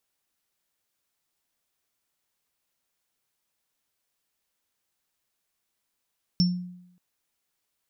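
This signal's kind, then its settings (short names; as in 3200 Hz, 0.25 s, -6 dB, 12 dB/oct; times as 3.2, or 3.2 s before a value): sine partials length 0.58 s, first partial 179 Hz, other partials 5410 Hz, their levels -4 dB, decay 0.79 s, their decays 0.24 s, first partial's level -16.5 dB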